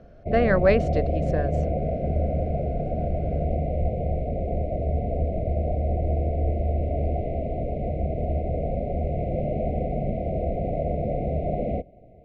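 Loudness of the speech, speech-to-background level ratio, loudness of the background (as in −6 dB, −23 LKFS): −24.5 LKFS, 2.5 dB, −27.0 LKFS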